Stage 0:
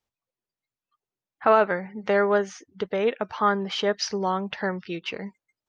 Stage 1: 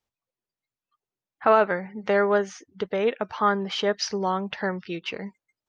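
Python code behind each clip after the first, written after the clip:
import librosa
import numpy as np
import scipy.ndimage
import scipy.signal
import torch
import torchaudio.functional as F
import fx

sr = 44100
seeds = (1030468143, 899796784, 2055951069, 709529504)

y = x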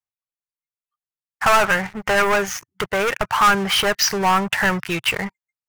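y = fx.low_shelf(x, sr, hz=260.0, db=-10.0)
y = fx.leveller(y, sr, passes=5)
y = fx.graphic_eq(y, sr, hz=(125, 250, 500, 4000), db=(7, -11, -10, -8))
y = y * 10.0 ** (1.5 / 20.0)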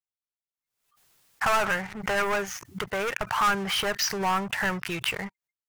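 y = fx.pre_swell(x, sr, db_per_s=85.0)
y = y * 10.0 ** (-8.5 / 20.0)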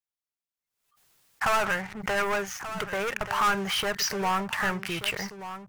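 y = x + 10.0 ** (-12.0 / 20.0) * np.pad(x, (int(1182 * sr / 1000.0), 0))[:len(x)]
y = y * 10.0 ** (-1.0 / 20.0)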